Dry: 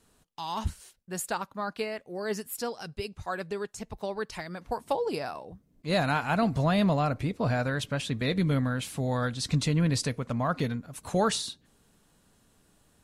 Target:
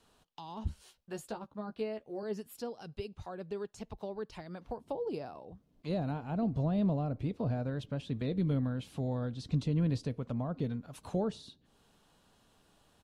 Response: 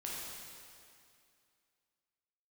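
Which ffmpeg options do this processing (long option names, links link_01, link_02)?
-filter_complex "[0:a]firequalizer=gain_entry='entry(190,0);entry(800,7);entry(2000,1);entry(3000,7);entry(7900,-3)':delay=0.05:min_phase=1,acrossover=split=470[link_01][link_02];[link_02]acompressor=threshold=-45dB:ratio=6[link_03];[link_01][link_03]amix=inputs=2:normalize=0,asettb=1/sr,asplit=3[link_04][link_05][link_06];[link_04]atrim=end=0.694[link_07];[link_05]atrim=start=0.69:end=2.23,asetpts=PTS-STARTPTS,afade=type=in:duration=0.004:curve=qsin,afade=type=out:start_time=1.536:duration=0.004:curve=qsin,asplit=2[link_08][link_09];[link_09]adelay=14,volume=-5.5dB[link_10];[link_08][link_10]amix=inputs=2:normalize=0,atrim=end_sample=67914[link_11];[link_06]atrim=start=2.226[link_12];[link_07][link_11]acrossfade=duration=0.004:curve1=hsin:curve2=qsin[link_13];[link_13][link_12]acrossfade=duration=0.004:curve1=qsin:curve2=hsin,volume=-4.5dB"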